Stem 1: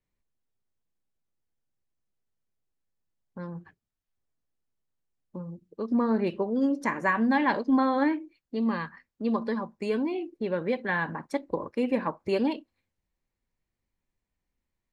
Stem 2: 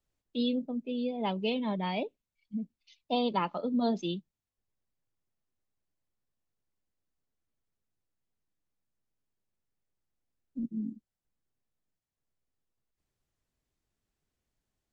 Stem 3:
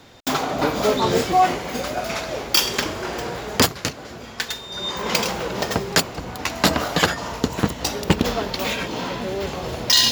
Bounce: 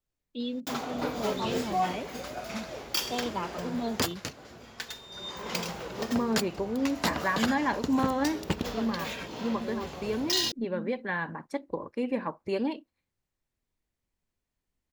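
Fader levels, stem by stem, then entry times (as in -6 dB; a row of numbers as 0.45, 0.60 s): -3.5, -4.0, -12.0 dB; 0.20, 0.00, 0.40 s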